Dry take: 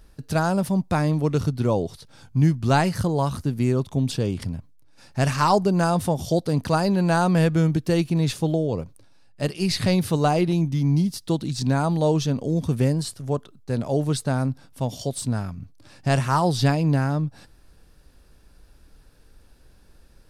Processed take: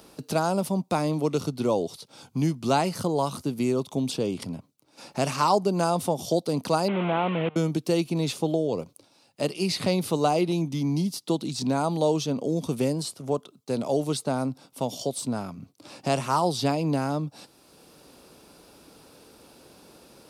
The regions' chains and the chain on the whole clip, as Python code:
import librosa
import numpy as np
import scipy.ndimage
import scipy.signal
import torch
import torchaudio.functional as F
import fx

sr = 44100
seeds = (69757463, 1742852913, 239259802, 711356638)

y = fx.chain(x, sr, fx.delta_mod(bps=16000, step_db=-20.0),
    fx.level_steps(step_db=22), at=(6.88, 7.56))
y = scipy.signal.sosfilt(scipy.signal.butter(2, 240.0, 'highpass', fs=sr, output='sos'), y)
y = fx.peak_eq(y, sr, hz=1700.0, db=-11.5, octaves=0.43)
y = fx.band_squash(y, sr, depth_pct=40)